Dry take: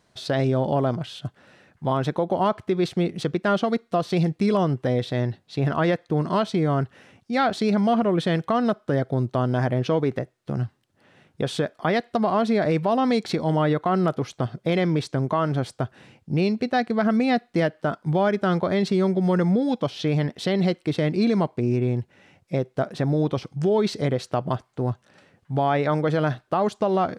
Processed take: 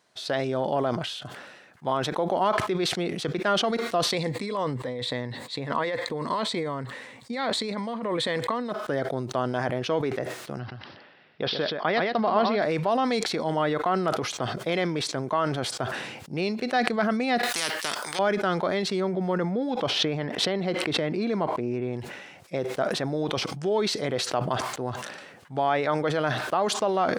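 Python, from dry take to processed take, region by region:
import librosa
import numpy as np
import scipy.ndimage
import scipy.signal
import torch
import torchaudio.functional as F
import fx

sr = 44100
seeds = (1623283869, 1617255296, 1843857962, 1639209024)

y = fx.chain(x, sr, fx.ripple_eq(per_octave=1.0, db=9),
    fx.over_compress(threshold_db=-24.0, ratio=-1.0), at=(4.12, 8.72))
y = fx.chain(y, sr, fx.lowpass(hz=6400.0, slope=12),
    fx.echo_single(ms=125, db=-7.0),
    fx.resample_bad(factor=4, down='none', up='filtered'), at=(10.59, 12.62))
y = fx.chain(y, sr, fx.high_shelf(hz=5400.0, db=11.0),
    fx.spectral_comp(ratio=4.0), at=(17.43, 18.19))
y = fx.chain(y, sr, fx.high_shelf(hz=3500.0, db=-12.0),
    fx.pre_swell(db_per_s=59.0), at=(19.0, 21.93))
y = fx.highpass(y, sr, hz=540.0, slope=6)
y = fx.sustainer(y, sr, db_per_s=42.0)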